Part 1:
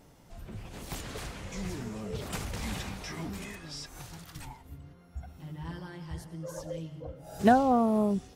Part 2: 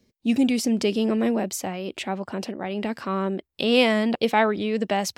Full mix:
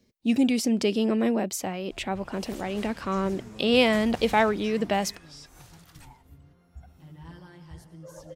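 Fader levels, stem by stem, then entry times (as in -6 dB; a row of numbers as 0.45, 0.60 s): -5.0, -1.5 dB; 1.60, 0.00 s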